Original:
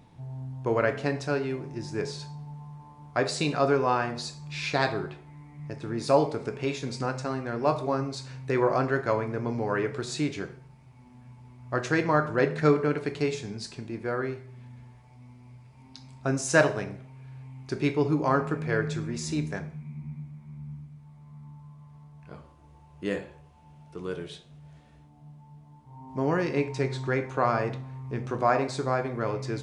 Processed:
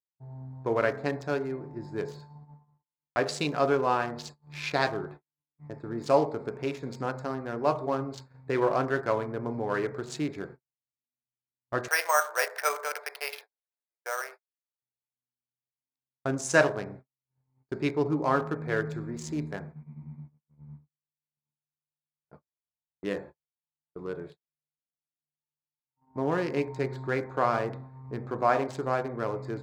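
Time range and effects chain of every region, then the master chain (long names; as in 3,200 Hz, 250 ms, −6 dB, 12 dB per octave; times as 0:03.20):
0:11.88–0:14.82: Butterworth high-pass 560 Hz + parametric band 9,600 Hz +13 dB 2.9 octaves + bad sample-rate conversion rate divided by 6×, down filtered, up hold
whole clip: adaptive Wiener filter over 15 samples; low-shelf EQ 200 Hz −7 dB; noise gate −44 dBFS, range −52 dB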